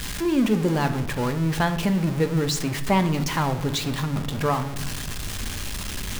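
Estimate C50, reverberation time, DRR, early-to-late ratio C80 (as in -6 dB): 12.5 dB, 0.85 s, 7.5 dB, 15.0 dB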